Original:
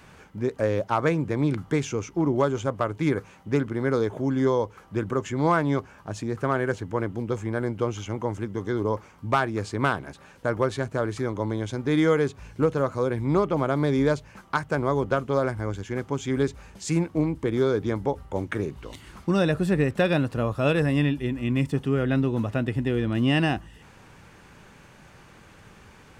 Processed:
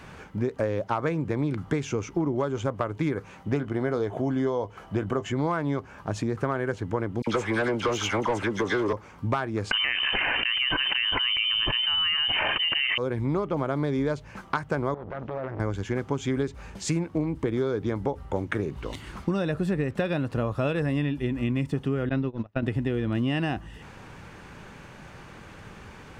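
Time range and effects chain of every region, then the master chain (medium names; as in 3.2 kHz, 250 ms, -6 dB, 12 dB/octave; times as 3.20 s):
3.51–5.32 s: doubling 20 ms -13 dB + small resonant body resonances 700/3000 Hz, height 11 dB
7.22–8.93 s: peaking EQ 7.6 kHz +6.5 dB 2.4 oct + phase dispersion lows, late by 53 ms, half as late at 1.8 kHz + overdrive pedal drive 20 dB, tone 4.1 kHz, clips at -12.5 dBFS
9.71–12.98 s: Chebyshev high-pass 210 Hz, order 6 + frequency inversion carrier 3.3 kHz + level flattener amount 100%
14.94–15.60 s: compression 20:1, threshold -28 dBFS + distance through air 180 m + transformer saturation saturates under 1 kHz
22.09–22.63 s: gate -24 dBFS, range -37 dB + steep low-pass 5.8 kHz
whole clip: treble shelf 5.8 kHz -7.5 dB; compression 6:1, threshold -29 dBFS; trim +5.5 dB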